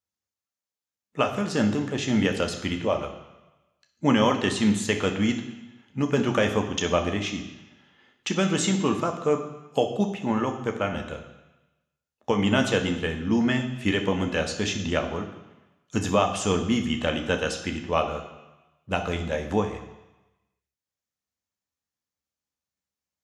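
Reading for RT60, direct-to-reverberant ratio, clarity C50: 1.0 s, 4.0 dB, 9.0 dB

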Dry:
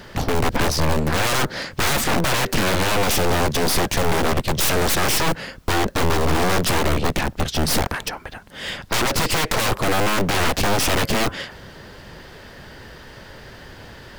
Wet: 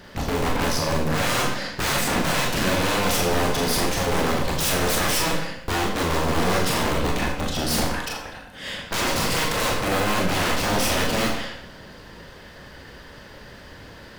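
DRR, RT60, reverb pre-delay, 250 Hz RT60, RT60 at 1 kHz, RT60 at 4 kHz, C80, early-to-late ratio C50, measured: −1.5 dB, 0.70 s, 25 ms, 0.70 s, 0.70 s, 0.65 s, 6.0 dB, 3.5 dB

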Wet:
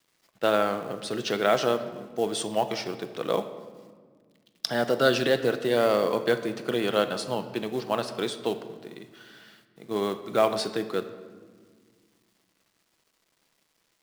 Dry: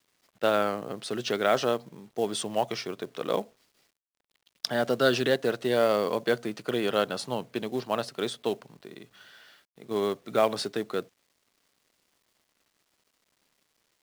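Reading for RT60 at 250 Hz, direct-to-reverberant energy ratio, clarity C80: 2.6 s, 8.5 dB, 12.5 dB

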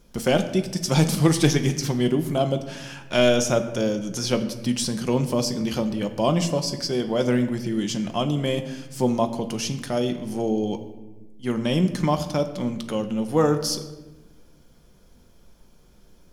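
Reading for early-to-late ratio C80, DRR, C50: 12.5 dB, 6.0 dB, 11.0 dB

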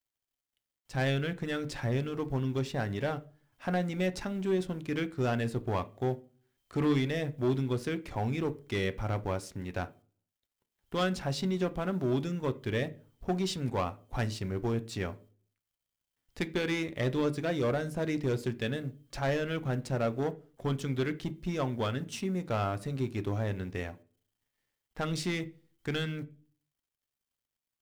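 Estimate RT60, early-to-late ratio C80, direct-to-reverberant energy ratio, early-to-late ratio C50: 0.40 s, 25.0 dB, 10.0 dB, 20.0 dB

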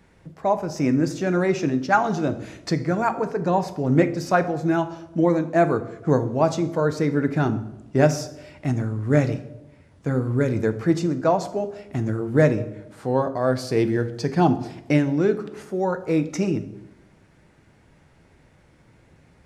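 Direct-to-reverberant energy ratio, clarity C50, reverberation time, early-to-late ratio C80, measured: 9.0 dB, 14.0 dB, 0.95 s, 16.5 dB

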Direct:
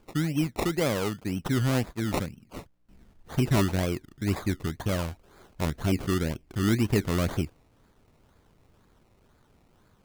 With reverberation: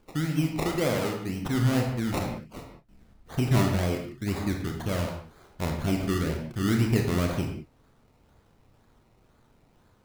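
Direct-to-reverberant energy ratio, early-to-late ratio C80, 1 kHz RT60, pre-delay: 1.5 dB, 7.0 dB, can't be measured, 25 ms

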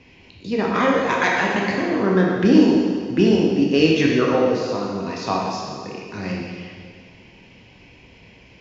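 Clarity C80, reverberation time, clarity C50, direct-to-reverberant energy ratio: 2.0 dB, 1.9 s, 0.0 dB, −2.5 dB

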